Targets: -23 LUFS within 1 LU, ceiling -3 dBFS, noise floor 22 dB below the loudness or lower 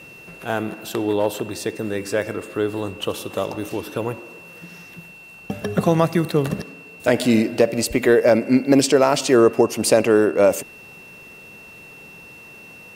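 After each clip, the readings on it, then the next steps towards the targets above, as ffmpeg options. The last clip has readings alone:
steady tone 2.7 kHz; tone level -41 dBFS; loudness -20.0 LUFS; peak level -2.0 dBFS; loudness target -23.0 LUFS
-> -af "bandreject=f=2700:w=30"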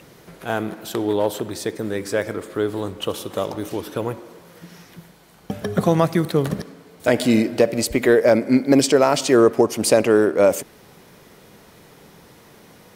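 steady tone not found; loudness -20.0 LUFS; peak level -2.0 dBFS; loudness target -23.0 LUFS
-> -af "volume=0.708"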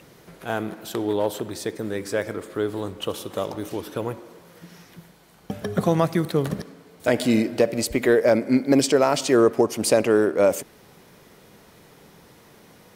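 loudness -23.0 LUFS; peak level -5.0 dBFS; noise floor -52 dBFS

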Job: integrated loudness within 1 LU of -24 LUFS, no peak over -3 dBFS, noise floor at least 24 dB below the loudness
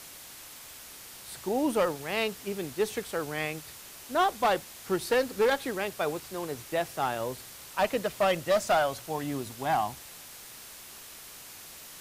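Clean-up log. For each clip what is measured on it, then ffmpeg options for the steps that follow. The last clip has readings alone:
noise floor -47 dBFS; noise floor target -54 dBFS; loudness -29.5 LUFS; peak level -15.0 dBFS; loudness target -24.0 LUFS
-> -af "afftdn=nr=7:nf=-47"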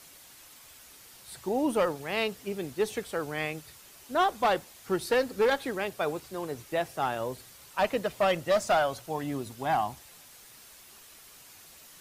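noise floor -53 dBFS; noise floor target -54 dBFS
-> -af "afftdn=nr=6:nf=-53"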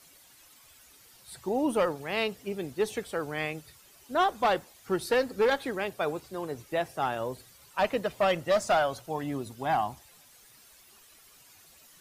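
noise floor -57 dBFS; loudness -30.0 LUFS; peak level -15.0 dBFS; loudness target -24.0 LUFS
-> -af "volume=2"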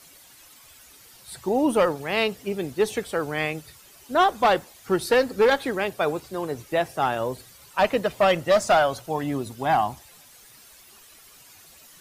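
loudness -24.0 LUFS; peak level -9.0 dBFS; noise floor -51 dBFS

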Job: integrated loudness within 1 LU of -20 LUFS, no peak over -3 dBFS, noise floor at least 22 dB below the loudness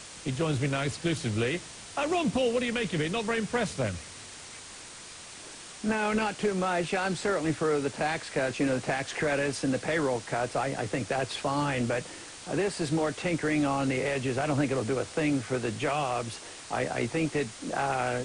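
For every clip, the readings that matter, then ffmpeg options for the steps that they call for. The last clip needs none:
noise floor -45 dBFS; noise floor target -52 dBFS; loudness -29.5 LUFS; peak level -16.5 dBFS; loudness target -20.0 LUFS
-> -af "afftdn=nr=7:nf=-45"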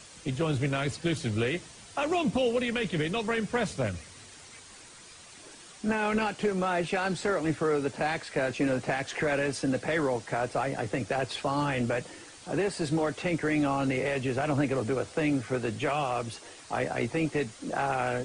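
noise floor -50 dBFS; noise floor target -52 dBFS
-> -af "afftdn=nr=6:nf=-50"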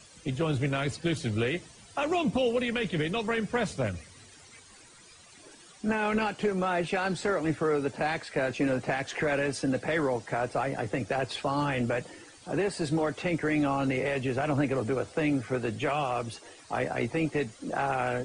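noise floor -54 dBFS; loudness -29.5 LUFS; peak level -16.5 dBFS; loudness target -20.0 LUFS
-> -af "volume=2.99"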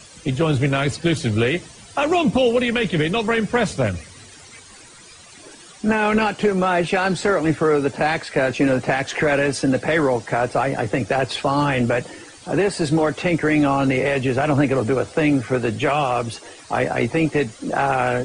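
loudness -20.0 LUFS; peak level -7.0 dBFS; noise floor -44 dBFS

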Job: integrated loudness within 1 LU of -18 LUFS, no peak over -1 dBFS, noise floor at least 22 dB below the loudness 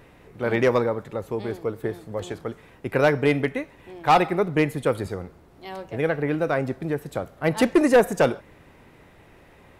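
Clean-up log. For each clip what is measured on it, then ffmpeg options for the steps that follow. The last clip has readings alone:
loudness -23.5 LUFS; peak level -9.5 dBFS; loudness target -18.0 LUFS
-> -af "volume=1.88"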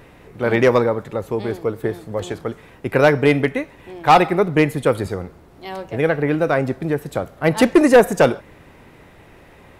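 loudness -18.0 LUFS; peak level -4.0 dBFS; noise floor -47 dBFS

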